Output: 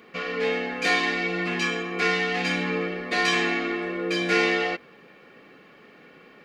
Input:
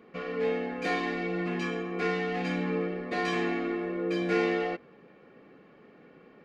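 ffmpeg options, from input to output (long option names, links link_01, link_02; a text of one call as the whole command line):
ffmpeg -i in.wav -af "tiltshelf=frequency=1400:gain=-7,volume=8dB" out.wav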